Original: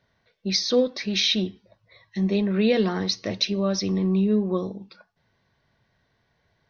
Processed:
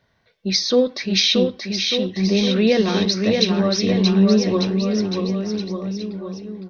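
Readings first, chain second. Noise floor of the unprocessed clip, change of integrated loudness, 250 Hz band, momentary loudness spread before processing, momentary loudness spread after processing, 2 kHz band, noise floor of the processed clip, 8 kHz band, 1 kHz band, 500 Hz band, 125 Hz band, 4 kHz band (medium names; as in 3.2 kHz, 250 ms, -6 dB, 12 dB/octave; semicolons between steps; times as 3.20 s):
-71 dBFS, +5.0 dB, +6.5 dB, 10 LU, 11 LU, +6.0 dB, -64 dBFS, no reading, +6.0 dB, +6.0 dB, +6.5 dB, +6.0 dB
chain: bouncing-ball echo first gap 630 ms, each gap 0.9×, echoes 5; trim +4 dB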